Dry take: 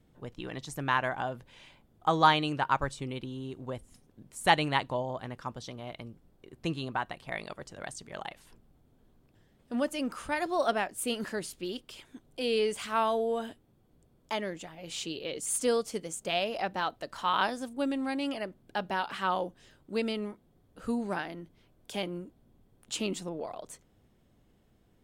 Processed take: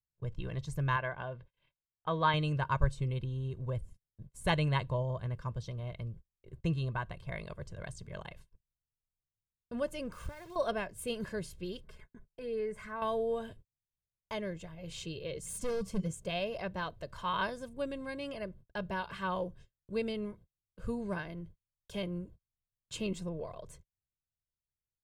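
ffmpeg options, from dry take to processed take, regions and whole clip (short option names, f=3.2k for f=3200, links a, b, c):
-filter_complex "[0:a]asettb=1/sr,asplit=3[a][b][c];[a]atrim=end=0.964[d];[b]atrim=start=0.96:end=2.34,asetpts=PTS-STARTPTS,afade=t=in:d=0.004:c=qsin,afade=t=out:st=1.376:d=0.004:c=qsin,lowpass=f=3.9k:w=0.5412,lowpass=f=3.9k:w=1.3066,lowshelf=f=200:g=-11.5[e];[c]atrim=start=2.336[f];[d][e]acrossfade=d=0.004:c1=hsin:c2=qsin[g];[g][f]acrossfade=d=0.004:c1=qsin:c2=hsin,asettb=1/sr,asplit=3[h][i][j];[h]atrim=end=10.124[k];[i]atrim=start=10.12:end=10.56,asetpts=PTS-STARTPTS,afade=t=in:d=0.004:c=qsin,afade=t=out:st=0.436:d=0.004:c=qsin,acompressor=threshold=-38dB:ratio=16:attack=3.2:release=140:knee=1:detection=peak,acrusher=bits=9:dc=4:mix=0:aa=0.000001[l];[j]atrim=start=10.556[m];[k][l]acrossfade=d=0.004:c1=hsin:c2=qsin[n];[n][m]acrossfade=d=0.004:c1=qsin:c2=hsin,asettb=1/sr,asplit=3[o][p][q];[o]atrim=end=11.844[r];[p]atrim=start=11.84:end=13.02,asetpts=PTS-STARTPTS,afade=t=in:d=0.004:c=qsin,afade=t=out:st=1.176:d=0.004:c=qsin,highshelf=f=2.4k:t=q:w=3:g=-7,aecho=1:1:4.7:0.54,atrim=end_sample=52038,acompressor=threshold=-45dB:ratio=1.5:attack=3.2:release=140:knee=1:detection=peak[s];[q]atrim=start=13.016[t];[r][s]acrossfade=d=0.004:c1=hsin:c2=qsin[u];[u][t]acrossfade=d=0.004:c1=qsin:c2=hsin,asettb=1/sr,asplit=3[v][w][x];[v]atrim=end=15.434[y];[w]atrim=start=15.43:end=16.11,asetpts=PTS-STARTPTS,afade=t=in:d=0.004:c=qsin,afade=t=out:st=0.676:d=0.004:c=qsin,equalizer=f=190:w=3.3:g=14.5,bandreject=f=379.6:t=h:w=4,bandreject=f=759.2:t=h:w=4,bandreject=f=1.1388k:t=h:w=4,bandreject=f=1.5184k:t=h:w=4,bandreject=f=1.898k:t=h:w=4,bandreject=f=2.2776k:t=h:w=4,bandreject=f=2.6572k:t=h:w=4,bandreject=f=3.0368k:t=h:w=4,bandreject=f=3.4164k:t=h:w=4,bandreject=f=3.796k:t=h:w=4,bandreject=f=4.1756k:t=h:w=4,bandreject=f=4.5552k:t=h:w=4,bandreject=f=4.9348k:t=h:w=4,bandreject=f=5.3144k:t=h:w=4,bandreject=f=5.694k:t=h:w=4,bandreject=f=6.0736k:t=h:w=4,bandreject=f=6.4532k:t=h:w=4,bandreject=f=6.8328k:t=h:w=4,bandreject=f=7.2124k:t=h:w=4,bandreject=f=7.592k:t=h:w=4,volume=29dB,asoftclip=hard,volume=-29dB[z];[x]atrim=start=16.106[aa];[y][z]acrossfade=d=0.004:c1=hsin:c2=qsin[ab];[ab][aa]acrossfade=d=0.004:c1=qsin:c2=hsin,agate=range=-41dB:threshold=-52dB:ratio=16:detection=peak,bass=f=250:g=15,treble=f=4k:g=-3,aecho=1:1:1.9:0.69,volume=-7.5dB"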